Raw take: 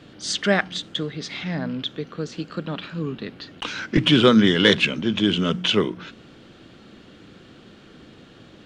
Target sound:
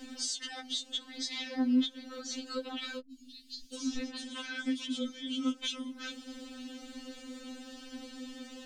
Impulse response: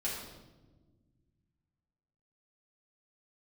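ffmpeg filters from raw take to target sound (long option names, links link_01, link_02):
-filter_complex "[0:a]acrossover=split=360|3000[link_01][link_02][link_03];[link_02]acompressor=threshold=-29dB:ratio=6[link_04];[link_01][link_04][link_03]amix=inputs=3:normalize=0,bass=frequency=250:gain=0,treble=frequency=4000:gain=14,acompressor=threshold=-31dB:ratio=12,lowshelf=frequency=220:gain=9.5,asettb=1/sr,asplit=3[link_05][link_06][link_07];[link_05]atrim=end=2.994[link_08];[link_06]atrim=start=2.99:end=5.28,asetpts=PTS-STARTPTS,afade=type=in:duration=0.004:curve=qsin,afade=type=out:start_time=2.286:duration=0.004:curve=qsin,acrossover=split=160|4000[link_09][link_10][link_11];[link_11]adelay=120[link_12];[link_10]adelay=750[link_13];[link_09][link_13][link_12]amix=inputs=3:normalize=0,atrim=end_sample=100989[link_14];[link_07]atrim=start=5.276[link_15];[link_08][link_14]acrossfade=duration=0.004:curve1=hsin:curve2=qsin[link_16];[link_16][link_15]acrossfade=duration=0.004:curve1=qsin:curve2=hsin,afftfilt=real='re*3.46*eq(mod(b,12),0)':imag='im*3.46*eq(mod(b,12),0)':win_size=2048:overlap=0.75"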